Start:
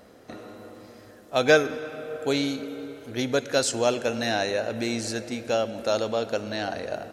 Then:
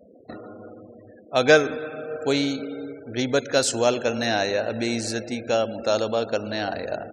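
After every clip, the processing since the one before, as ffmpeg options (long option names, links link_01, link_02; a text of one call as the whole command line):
ffmpeg -i in.wav -af "afftfilt=real='re*gte(hypot(re,im),0.00794)':imag='im*gte(hypot(re,im),0.00794)':win_size=1024:overlap=0.75,volume=2.5dB" out.wav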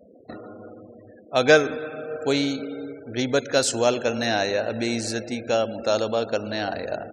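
ffmpeg -i in.wav -af anull out.wav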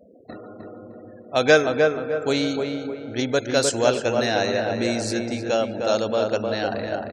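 ffmpeg -i in.wav -filter_complex "[0:a]asplit=2[link_01][link_02];[link_02]adelay=306,lowpass=frequency=1700:poles=1,volume=-3.5dB,asplit=2[link_03][link_04];[link_04]adelay=306,lowpass=frequency=1700:poles=1,volume=0.41,asplit=2[link_05][link_06];[link_06]adelay=306,lowpass=frequency=1700:poles=1,volume=0.41,asplit=2[link_07][link_08];[link_08]adelay=306,lowpass=frequency=1700:poles=1,volume=0.41,asplit=2[link_09][link_10];[link_10]adelay=306,lowpass=frequency=1700:poles=1,volume=0.41[link_11];[link_01][link_03][link_05][link_07][link_09][link_11]amix=inputs=6:normalize=0" out.wav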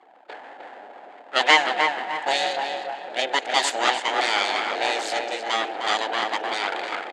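ffmpeg -i in.wav -af "aeval=exprs='abs(val(0))':channel_layout=same,highpass=frequency=360:width=0.5412,highpass=frequency=360:width=1.3066,equalizer=frequency=400:width_type=q:width=4:gain=-4,equalizer=frequency=760:width_type=q:width=4:gain=5,equalizer=frequency=1100:width_type=q:width=4:gain=-10,equalizer=frequency=1700:width_type=q:width=4:gain=5,equalizer=frequency=3100:width_type=q:width=4:gain=3,equalizer=frequency=5700:width_type=q:width=4:gain=-9,lowpass=frequency=7800:width=0.5412,lowpass=frequency=7800:width=1.3066,volume=4.5dB" out.wav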